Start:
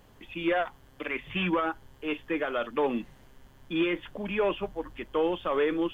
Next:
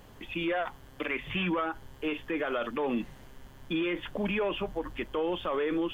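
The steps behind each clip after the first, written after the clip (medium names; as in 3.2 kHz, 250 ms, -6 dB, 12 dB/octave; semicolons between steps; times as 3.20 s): peak limiter -27 dBFS, peak gain reduction 10 dB; trim +4.5 dB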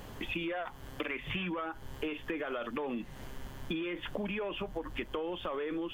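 compression 12:1, threshold -39 dBFS, peak gain reduction 13.5 dB; trim +6 dB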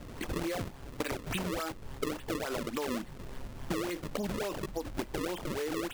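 decimation with a swept rate 33×, swing 160% 3.5 Hz; trim +1.5 dB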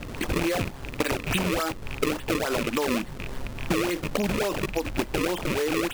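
rattle on loud lows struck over -41 dBFS, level -30 dBFS; trim +8.5 dB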